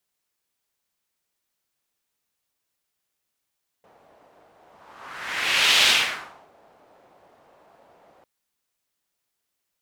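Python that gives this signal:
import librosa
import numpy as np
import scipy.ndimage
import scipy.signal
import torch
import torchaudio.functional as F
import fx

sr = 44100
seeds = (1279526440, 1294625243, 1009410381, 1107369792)

y = fx.whoosh(sr, seeds[0], length_s=4.4, peak_s=2.01, rise_s=1.35, fall_s=0.69, ends_hz=680.0, peak_hz=3200.0, q=1.9, swell_db=39)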